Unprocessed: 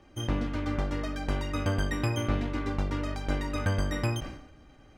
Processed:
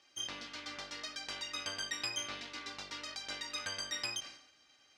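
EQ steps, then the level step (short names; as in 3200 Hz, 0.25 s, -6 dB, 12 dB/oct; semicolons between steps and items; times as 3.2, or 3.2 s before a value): band-pass 4900 Hz, Q 1.7; +7.5 dB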